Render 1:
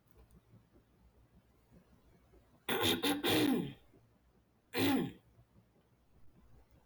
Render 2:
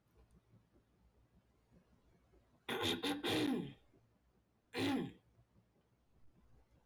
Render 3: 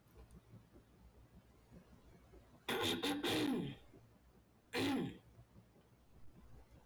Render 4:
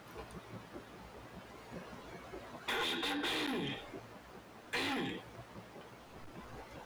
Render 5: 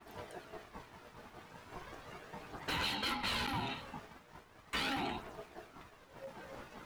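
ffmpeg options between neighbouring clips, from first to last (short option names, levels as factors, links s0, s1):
-af "lowpass=9300,volume=0.531"
-af "highshelf=f=10000:g=4,acompressor=threshold=0.00631:ratio=2.5,asoftclip=type=tanh:threshold=0.01,volume=2.51"
-filter_complex "[0:a]acrossover=split=1100[s0][s1];[s0]alimiter=level_in=6.68:limit=0.0631:level=0:latency=1,volume=0.15[s2];[s2][s1]amix=inputs=2:normalize=0,acompressor=threshold=0.00398:ratio=3,asplit=2[s3][s4];[s4]highpass=f=720:p=1,volume=11.2,asoftclip=type=tanh:threshold=0.02[s5];[s3][s5]amix=inputs=2:normalize=0,lowpass=f=2900:p=1,volume=0.501,volume=2.37"
-af "aphaser=in_gain=1:out_gain=1:delay=3.3:decay=0.4:speed=0.38:type=triangular,aeval=exprs='val(0)*sin(2*PI*540*n/s)':c=same,agate=range=0.0224:threshold=0.00282:ratio=3:detection=peak,volume=1.33"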